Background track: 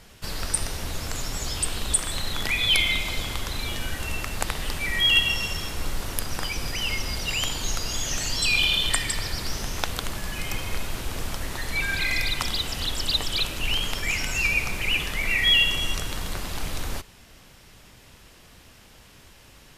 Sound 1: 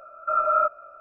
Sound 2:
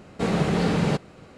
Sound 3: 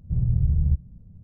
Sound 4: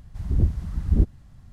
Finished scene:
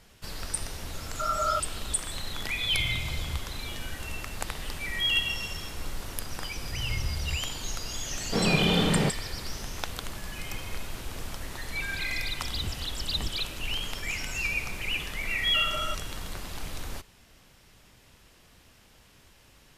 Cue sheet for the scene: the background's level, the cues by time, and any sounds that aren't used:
background track -6.5 dB
0.92 s: add 1 -6.5 dB
2.62 s: add 3 -18 dB + comb 1.3 ms, depth 72%
6.61 s: add 3 -9.5 dB + peaking EQ 240 Hz -9.5 dB 1.7 oct
8.13 s: add 2 -2.5 dB
12.24 s: add 4 -15.5 dB
15.27 s: add 1 -10.5 dB + peak limiter -16.5 dBFS

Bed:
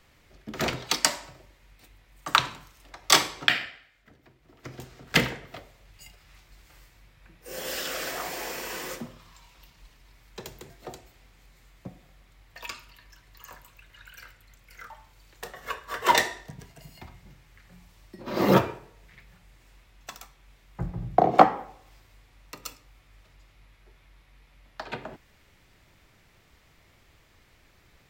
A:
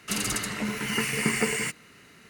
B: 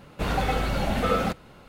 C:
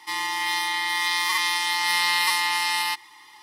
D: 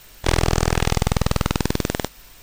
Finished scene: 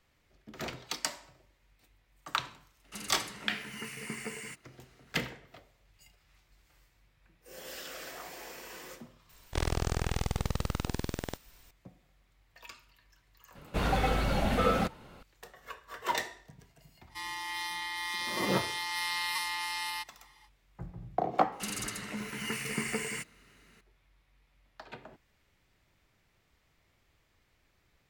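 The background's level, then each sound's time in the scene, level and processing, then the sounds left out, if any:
bed -11 dB
2.84 s: add A -14.5 dB
9.29 s: add D -13.5 dB + peaking EQ 65 Hz +4 dB 1.1 oct
13.55 s: add B -3 dB
17.08 s: add C -11.5 dB, fades 0.05 s
21.52 s: add A -8.5 dB

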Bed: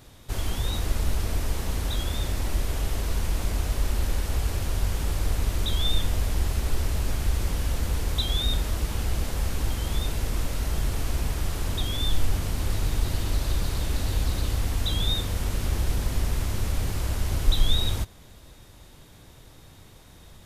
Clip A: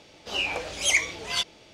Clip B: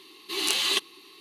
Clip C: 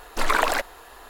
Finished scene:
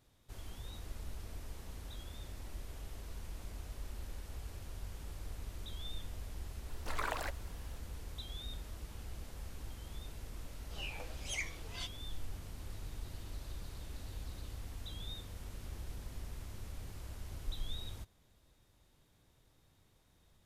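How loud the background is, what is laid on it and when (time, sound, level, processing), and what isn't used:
bed -19.5 dB
6.69 s: add C -17 dB
10.44 s: add A -13.5 dB + flange 1.3 Hz, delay 6.1 ms, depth 8 ms, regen +63%
not used: B

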